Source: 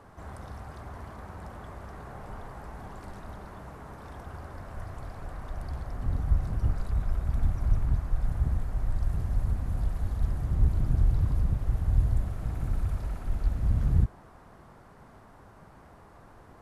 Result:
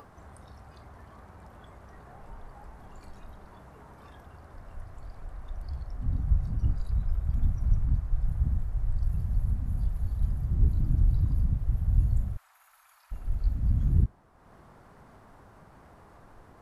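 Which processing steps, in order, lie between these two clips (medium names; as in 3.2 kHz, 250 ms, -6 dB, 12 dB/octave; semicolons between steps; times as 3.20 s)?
upward compressor, threshold -35 dBFS; 12.37–13.12 s: inverse Chebyshev high-pass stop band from 360 Hz, stop band 50 dB; spectral noise reduction 9 dB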